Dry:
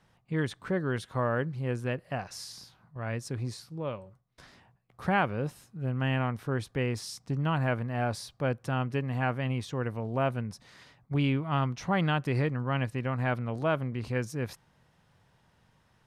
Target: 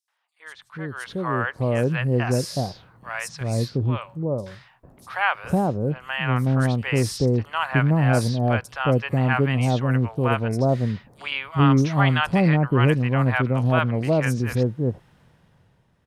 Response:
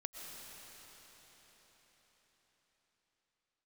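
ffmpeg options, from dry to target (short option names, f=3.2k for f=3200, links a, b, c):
-filter_complex "[0:a]dynaudnorm=f=160:g=13:m=15dB,acrossover=split=770|5300[a][b][c];[b]adelay=80[d];[a]adelay=450[e];[e][d][c]amix=inputs=3:normalize=0,volume=-3.5dB"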